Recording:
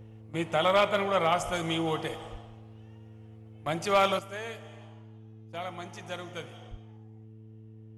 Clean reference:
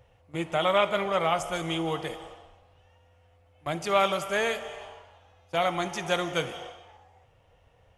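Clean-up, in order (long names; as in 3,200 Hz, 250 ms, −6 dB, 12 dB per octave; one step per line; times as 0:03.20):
clipped peaks rebuilt −15.5 dBFS
hum removal 109.7 Hz, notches 4
0:01.45–0:01.57: high-pass filter 140 Hz 24 dB per octave
0:02.31–0:02.43: high-pass filter 140 Hz 24 dB per octave
0:06.70–0:06.82: high-pass filter 140 Hz 24 dB per octave
level 0 dB, from 0:04.19 +11.5 dB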